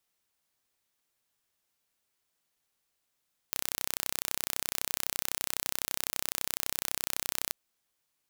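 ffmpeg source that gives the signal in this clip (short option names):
-f lavfi -i "aevalsrc='0.668*eq(mod(n,1382),0)':d=3.99:s=44100"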